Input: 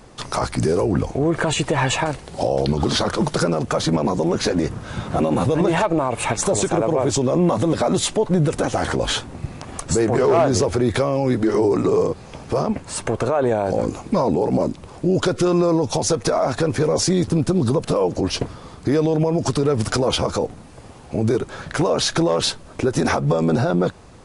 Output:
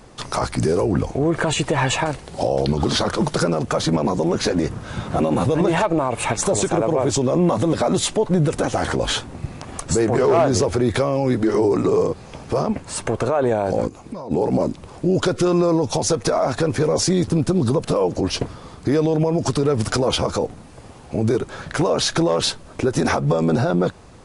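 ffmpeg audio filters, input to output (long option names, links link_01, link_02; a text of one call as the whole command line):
ffmpeg -i in.wav -filter_complex "[0:a]asplit=3[link_01][link_02][link_03];[link_01]afade=type=out:start_time=13.87:duration=0.02[link_04];[link_02]acompressor=threshold=-32dB:ratio=4,afade=type=in:start_time=13.87:duration=0.02,afade=type=out:start_time=14.3:duration=0.02[link_05];[link_03]afade=type=in:start_time=14.3:duration=0.02[link_06];[link_04][link_05][link_06]amix=inputs=3:normalize=0" out.wav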